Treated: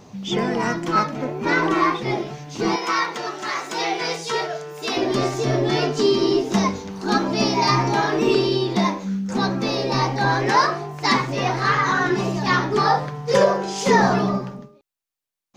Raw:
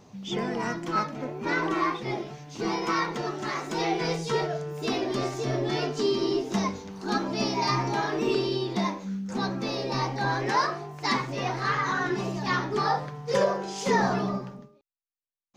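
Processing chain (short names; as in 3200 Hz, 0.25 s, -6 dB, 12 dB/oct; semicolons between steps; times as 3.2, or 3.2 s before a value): 2.76–4.97 HPF 810 Hz 6 dB/oct; gain +7.5 dB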